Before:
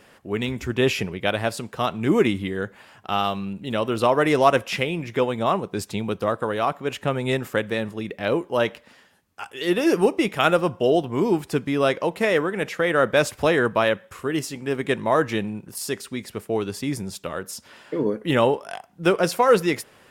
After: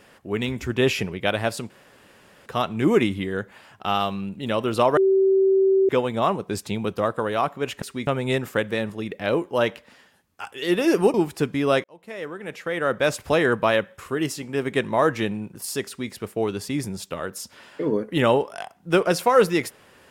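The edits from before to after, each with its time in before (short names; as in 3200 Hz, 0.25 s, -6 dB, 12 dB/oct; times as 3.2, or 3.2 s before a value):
1.7 insert room tone 0.76 s
4.21–5.13 bleep 385 Hz -14.5 dBFS
10.13–11.27 cut
11.97–13.59 fade in
15.99–16.24 copy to 7.06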